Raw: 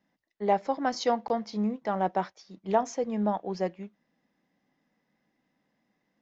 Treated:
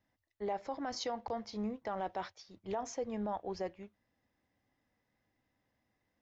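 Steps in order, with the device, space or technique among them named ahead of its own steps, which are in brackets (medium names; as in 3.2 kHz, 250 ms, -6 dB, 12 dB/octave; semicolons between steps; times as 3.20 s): car stereo with a boomy subwoofer (resonant low shelf 130 Hz +9.5 dB, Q 3; peak limiter -23.5 dBFS, peak gain reduction 10.5 dB); 1.96–2.58 s: dynamic bell 3.6 kHz, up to +6 dB, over -56 dBFS, Q 0.91; trim -4.5 dB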